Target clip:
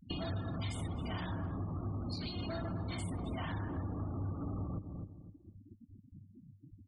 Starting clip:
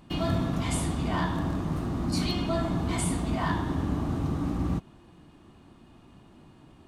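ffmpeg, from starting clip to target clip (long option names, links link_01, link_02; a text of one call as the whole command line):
ffmpeg -i in.wav -filter_complex "[0:a]bandreject=frequency=149.6:width_type=h:width=4,bandreject=frequency=299.2:width_type=h:width=4,bandreject=frequency=448.8:width_type=h:width=4,bandreject=frequency=598.4:width_type=h:width=4,bandreject=frequency=748:width_type=h:width=4,bandreject=frequency=897.6:width_type=h:width=4,bandreject=frequency=1047.2:width_type=h:width=4,bandreject=frequency=1196.8:width_type=h:width=4,bandreject=frequency=1346.4:width_type=h:width=4,bandreject=frequency=1496:width_type=h:width=4,bandreject=frequency=1645.6:width_type=h:width=4,bandreject=frequency=1795.2:width_type=h:width=4,volume=27.5dB,asoftclip=hard,volume=-27.5dB,afftfilt=real='re*gte(hypot(re,im),0.0158)':imag='im*gte(hypot(re,im),0.0158)':win_size=1024:overlap=0.75,equalizer=frequency=4300:width_type=o:width=1.2:gain=12,bandreject=frequency=990:width=14,asplit=2[link_01][link_02];[link_02]adelay=254,lowpass=frequency=860:poles=1,volume=-15dB,asplit=2[link_03][link_04];[link_04]adelay=254,lowpass=frequency=860:poles=1,volume=0.3,asplit=2[link_05][link_06];[link_06]adelay=254,lowpass=frequency=860:poles=1,volume=0.3[link_07];[link_01][link_03][link_05][link_07]amix=inputs=4:normalize=0,acompressor=threshold=-36dB:ratio=6,equalizer=frequency=99:width_type=o:width=0.22:gain=13.5,acrossover=split=1200|3100[link_08][link_09][link_10];[link_08]acompressor=threshold=-37dB:ratio=4[link_11];[link_09]acompressor=threshold=-50dB:ratio=4[link_12];[link_10]acompressor=threshold=-53dB:ratio=4[link_13];[link_11][link_12][link_13]amix=inputs=3:normalize=0,volume=1dB" out.wav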